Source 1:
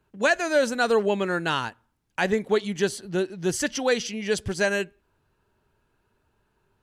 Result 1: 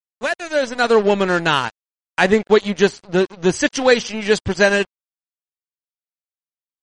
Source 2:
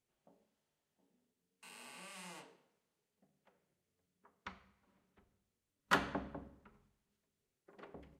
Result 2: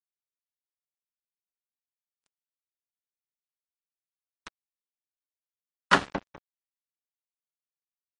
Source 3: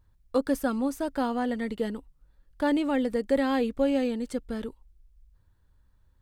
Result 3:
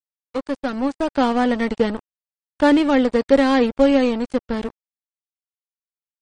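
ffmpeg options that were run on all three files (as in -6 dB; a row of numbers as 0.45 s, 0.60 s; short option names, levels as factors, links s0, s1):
-af "lowpass=6800,dynaudnorm=f=320:g=5:m=3.98,aeval=exprs='sgn(val(0))*max(abs(val(0))-0.0376,0)':c=same,volume=1.19" -ar 44100 -c:a libmp3lame -b:a 40k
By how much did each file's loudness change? +7.5 LU, +14.5 LU, +9.0 LU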